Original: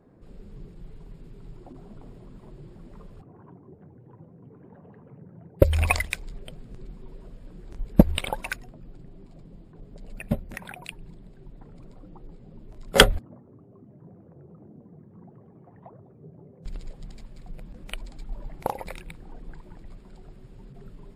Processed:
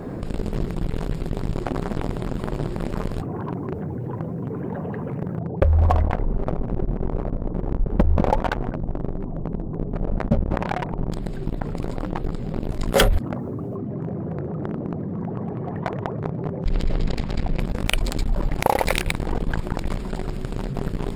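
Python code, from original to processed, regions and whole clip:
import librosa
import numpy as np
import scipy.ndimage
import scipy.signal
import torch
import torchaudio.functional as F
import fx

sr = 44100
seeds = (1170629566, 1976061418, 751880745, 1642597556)

y = fx.chain(x, sr, fx.cheby2_lowpass(hz=2600.0, order=4, stop_db=50),
    fx.echo_single(ms=201, db=-20.0), at=(5.38, 11.12))
y = fx.chain(y, sr, fx.lowpass(hz=4000.0, slope=12),
    fx.echo_feedback(ms=197, feedback_pct=25, wet_db=-4), at=(13.76, 17.6))
y = fx.leveller(y, sr, passes=3)
y = fx.env_flatten(y, sr, amount_pct=70)
y = F.gain(torch.from_numpy(y), -9.0).numpy()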